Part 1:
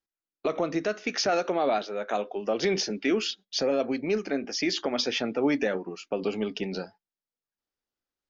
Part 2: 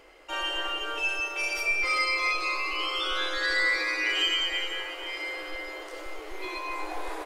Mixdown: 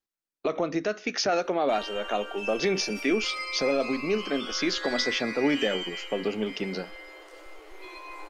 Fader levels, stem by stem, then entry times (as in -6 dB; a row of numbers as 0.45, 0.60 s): 0.0, -8.0 dB; 0.00, 1.40 s